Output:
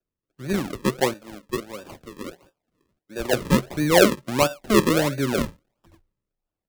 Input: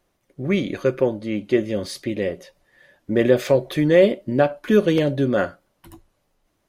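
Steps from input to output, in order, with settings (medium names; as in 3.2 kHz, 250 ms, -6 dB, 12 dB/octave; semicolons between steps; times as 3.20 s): 1.13–3.33 s: high-pass 720 Hz 6 dB/octave; decimation with a swept rate 41×, swing 100% 1.5 Hz; three bands expanded up and down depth 40%; trim -3 dB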